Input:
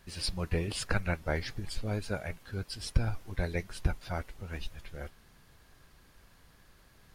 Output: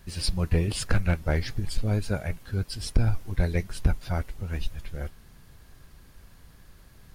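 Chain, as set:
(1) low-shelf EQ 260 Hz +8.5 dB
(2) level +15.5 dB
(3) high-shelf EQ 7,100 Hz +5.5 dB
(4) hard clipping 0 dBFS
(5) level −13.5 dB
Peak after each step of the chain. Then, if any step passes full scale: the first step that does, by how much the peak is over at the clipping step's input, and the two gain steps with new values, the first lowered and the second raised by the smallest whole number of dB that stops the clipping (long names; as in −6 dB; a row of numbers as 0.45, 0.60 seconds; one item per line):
−6.0, +9.5, +9.5, 0.0, −13.5 dBFS
step 2, 9.5 dB
step 2 +5.5 dB, step 5 −3.5 dB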